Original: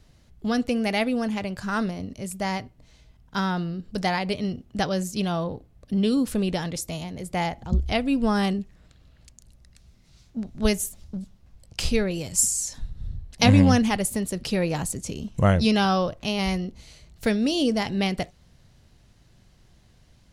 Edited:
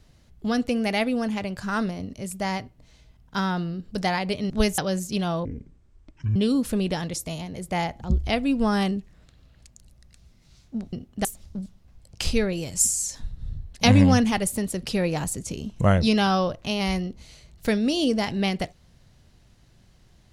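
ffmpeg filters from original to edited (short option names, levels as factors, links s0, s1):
-filter_complex "[0:a]asplit=7[s0][s1][s2][s3][s4][s5][s6];[s0]atrim=end=4.502[s7];[s1]atrim=start=10.548:end=10.832[s8];[s2]atrim=start=4.818:end=5.494[s9];[s3]atrim=start=5.49:end=5.98,asetpts=PTS-STARTPTS,asetrate=23814,aresample=44100[s10];[s4]atrim=start=5.976:end=10.552[s11];[s5]atrim=start=4.498:end=4.822[s12];[s6]atrim=start=10.828[s13];[s7][s8]acrossfade=d=0.004:c1=hsin:c2=hsin[s14];[s14][s9]acrossfade=d=0.004:c1=hsin:c2=hsin[s15];[s15][s10]acrossfade=d=0.004:c1=hsin:c2=hsin[s16];[s16][s11]acrossfade=d=0.004:c1=hsin:c2=hsin[s17];[s17][s12]acrossfade=d=0.004:c1=hsin:c2=hsin[s18];[s18][s13]acrossfade=d=0.004:c1=hsin:c2=hsin"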